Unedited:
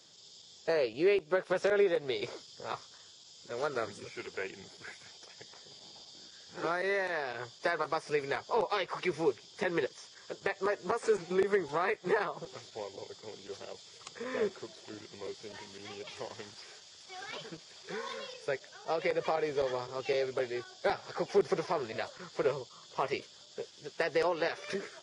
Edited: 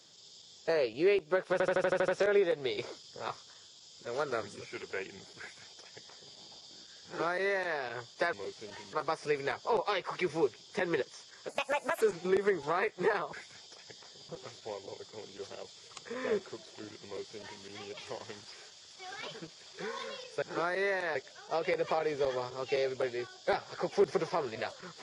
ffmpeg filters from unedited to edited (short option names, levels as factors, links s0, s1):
-filter_complex "[0:a]asplit=16[s0][s1][s2][s3][s4][s5][s6][s7][s8][s9][s10][s11][s12][s13][s14][s15];[s0]atrim=end=1.602[s16];[s1]atrim=start=1.518:end=1.602[s17];[s2]atrim=start=1.518:end=1.602[s18];[s3]atrim=start=1.518:end=1.602[s19];[s4]atrim=start=1.518:end=1.602[s20];[s5]atrim=start=1.518:end=1.602[s21];[s6]atrim=start=1.518:end=1.602[s22];[s7]atrim=start=1.518:end=7.772[s23];[s8]atrim=start=15.148:end=15.752[s24];[s9]atrim=start=7.768:end=10.334[s25];[s10]atrim=start=10.33:end=11.07,asetpts=PTS-STARTPTS,asetrate=62622,aresample=44100[s26];[s11]atrim=start=11.066:end=12.392[s27];[s12]atrim=start=4.838:end=5.802[s28];[s13]atrim=start=12.388:end=18.522[s29];[s14]atrim=start=6.488:end=7.222[s30];[s15]atrim=start=18.518[s31];[s16][s17]acrossfade=d=0.004:c1=hsin:c2=hsin[s32];[s32][s18]acrossfade=d=0.004:c1=hsin:c2=hsin[s33];[s33][s19]acrossfade=d=0.004:c1=hsin:c2=hsin[s34];[s34][s20]acrossfade=d=0.004:c1=hsin:c2=hsin[s35];[s35][s21]acrossfade=d=0.004:c1=hsin:c2=hsin[s36];[s36][s22]acrossfade=d=0.004:c1=hsin:c2=hsin[s37];[s37][s23]acrossfade=d=0.004:c1=hsin:c2=hsin[s38];[s38][s24]acrossfade=d=0.004:c1=hsin:c2=hsin[s39];[s39][s25]acrossfade=d=0.004:c1=hsin:c2=hsin[s40];[s40][s26]acrossfade=d=0.004:c1=hsin:c2=hsin[s41];[s41][s27]acrossfade=d=0.004:c1=hsin:c2=hsin[s42];[s42][s28]acrossfade=d=0.004:c1=hsin:c2=hsin[s43];[s43][s29]acrossfade=d=0.004:c1=hsin:c2=hsin[s44];[s44][s30]acrossfade=d=0.004:c1=hsin:c2=hsin[s45];[s45][s31]acrossfade=d=0.004:c1=hsin:c2=hsin"